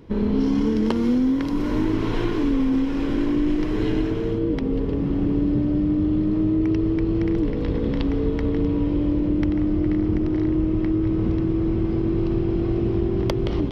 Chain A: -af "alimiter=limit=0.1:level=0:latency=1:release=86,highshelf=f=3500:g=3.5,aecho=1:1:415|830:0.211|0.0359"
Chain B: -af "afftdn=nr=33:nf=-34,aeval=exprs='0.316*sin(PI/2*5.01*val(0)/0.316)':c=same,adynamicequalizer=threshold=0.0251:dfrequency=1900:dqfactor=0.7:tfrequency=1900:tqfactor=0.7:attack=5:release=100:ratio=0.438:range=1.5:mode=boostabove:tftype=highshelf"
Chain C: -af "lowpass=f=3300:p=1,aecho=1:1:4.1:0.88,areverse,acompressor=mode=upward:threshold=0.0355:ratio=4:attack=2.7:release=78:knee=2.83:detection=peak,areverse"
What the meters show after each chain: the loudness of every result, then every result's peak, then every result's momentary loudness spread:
-28.0 LUFS, -14.0 LUFS, -20.0 LUFS; -17.5 dBFS, -6.0 dBFS, -7.0 dBFS; 2 LU, 1 LU, 7 LU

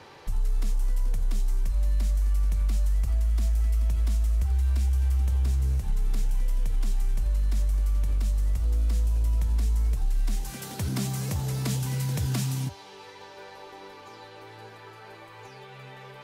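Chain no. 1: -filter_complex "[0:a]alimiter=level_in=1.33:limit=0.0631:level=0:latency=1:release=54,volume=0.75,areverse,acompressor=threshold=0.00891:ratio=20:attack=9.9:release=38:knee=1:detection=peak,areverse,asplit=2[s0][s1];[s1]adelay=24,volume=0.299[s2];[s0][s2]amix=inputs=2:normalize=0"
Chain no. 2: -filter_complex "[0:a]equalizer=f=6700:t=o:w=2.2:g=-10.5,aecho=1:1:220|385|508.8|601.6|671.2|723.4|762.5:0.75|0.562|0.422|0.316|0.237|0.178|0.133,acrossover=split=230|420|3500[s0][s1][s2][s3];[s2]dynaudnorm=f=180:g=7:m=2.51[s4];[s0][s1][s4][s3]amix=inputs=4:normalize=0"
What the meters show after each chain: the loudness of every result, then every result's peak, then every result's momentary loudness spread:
-45.0 LUFS, -22.0 LUFS; -30.0 dBFS, -8.5 dBFS; 7 LU, 20 LU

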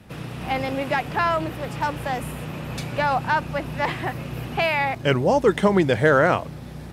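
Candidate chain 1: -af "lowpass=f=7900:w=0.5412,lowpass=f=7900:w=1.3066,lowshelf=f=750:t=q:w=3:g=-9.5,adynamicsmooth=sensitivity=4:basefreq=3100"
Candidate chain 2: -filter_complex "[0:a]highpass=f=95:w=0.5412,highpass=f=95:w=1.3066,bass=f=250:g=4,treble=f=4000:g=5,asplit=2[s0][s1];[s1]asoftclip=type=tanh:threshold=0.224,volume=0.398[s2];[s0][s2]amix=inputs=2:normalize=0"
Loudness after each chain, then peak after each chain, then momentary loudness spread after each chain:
-23.0 LUFS, -19.5 LUFS; -6.5 dBFS, -2.0 dBFS; 17 LU, 11 LU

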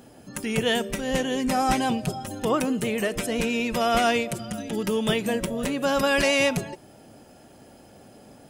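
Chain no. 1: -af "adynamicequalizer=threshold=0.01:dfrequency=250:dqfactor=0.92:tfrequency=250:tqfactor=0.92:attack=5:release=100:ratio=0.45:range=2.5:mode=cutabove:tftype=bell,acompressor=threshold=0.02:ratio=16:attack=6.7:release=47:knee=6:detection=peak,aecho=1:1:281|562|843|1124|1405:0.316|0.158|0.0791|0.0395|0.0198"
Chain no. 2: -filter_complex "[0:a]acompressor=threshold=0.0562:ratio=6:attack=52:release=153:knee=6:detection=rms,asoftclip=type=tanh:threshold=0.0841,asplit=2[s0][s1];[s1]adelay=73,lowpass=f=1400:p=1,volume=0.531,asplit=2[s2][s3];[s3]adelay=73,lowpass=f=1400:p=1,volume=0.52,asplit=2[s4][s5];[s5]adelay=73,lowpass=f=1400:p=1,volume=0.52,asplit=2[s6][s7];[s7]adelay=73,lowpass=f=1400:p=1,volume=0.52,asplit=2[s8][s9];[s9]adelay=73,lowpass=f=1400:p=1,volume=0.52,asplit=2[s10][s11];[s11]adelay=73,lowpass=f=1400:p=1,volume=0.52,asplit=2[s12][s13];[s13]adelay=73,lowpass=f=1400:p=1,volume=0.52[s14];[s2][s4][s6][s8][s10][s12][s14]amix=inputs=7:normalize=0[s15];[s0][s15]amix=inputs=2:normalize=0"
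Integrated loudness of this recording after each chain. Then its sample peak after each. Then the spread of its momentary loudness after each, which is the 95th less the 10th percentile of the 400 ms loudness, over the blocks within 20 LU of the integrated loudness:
-36.0 LUFS, -29.0 LUFS; -18.5 dBFS, -17.5 dBFS; 14 LU, 8 LU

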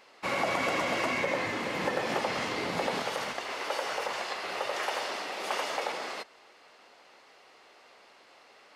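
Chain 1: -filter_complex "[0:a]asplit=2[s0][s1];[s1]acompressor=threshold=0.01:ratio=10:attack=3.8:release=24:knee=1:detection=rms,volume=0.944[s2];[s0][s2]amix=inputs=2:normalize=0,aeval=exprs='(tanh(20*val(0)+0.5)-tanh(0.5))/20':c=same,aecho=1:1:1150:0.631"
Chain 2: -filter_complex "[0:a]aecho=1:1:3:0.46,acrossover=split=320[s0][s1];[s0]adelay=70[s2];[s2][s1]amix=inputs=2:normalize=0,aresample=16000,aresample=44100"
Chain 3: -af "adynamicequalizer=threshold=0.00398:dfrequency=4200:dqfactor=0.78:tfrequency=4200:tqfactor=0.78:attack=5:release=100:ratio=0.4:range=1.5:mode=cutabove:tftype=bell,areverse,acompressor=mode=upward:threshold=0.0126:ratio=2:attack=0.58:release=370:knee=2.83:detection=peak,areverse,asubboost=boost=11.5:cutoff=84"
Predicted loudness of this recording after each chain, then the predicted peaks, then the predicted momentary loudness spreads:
-32.0 LUFS, -31.5 LUFS, -32.5 LUFS; -19.0 dBFS, -16.5 dBFS, -17.0 dBFS; 20 LU, 6 LU, 21 LU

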